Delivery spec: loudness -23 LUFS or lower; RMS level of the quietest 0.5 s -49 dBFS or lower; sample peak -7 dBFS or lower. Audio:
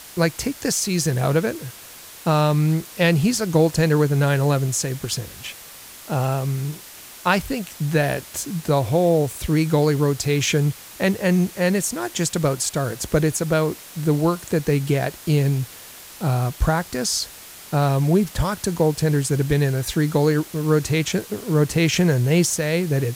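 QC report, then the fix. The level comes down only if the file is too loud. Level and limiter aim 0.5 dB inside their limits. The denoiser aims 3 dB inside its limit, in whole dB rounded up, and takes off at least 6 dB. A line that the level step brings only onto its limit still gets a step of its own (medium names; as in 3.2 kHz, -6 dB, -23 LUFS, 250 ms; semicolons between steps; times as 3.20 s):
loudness -21.0 LUFS: fail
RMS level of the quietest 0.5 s -41 dBFS: fail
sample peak -4.0 dBFS: fail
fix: noise reduction 9 dB, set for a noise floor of -41 dBFS; trim -2.5 dB; peak limiter -7.5 dBFS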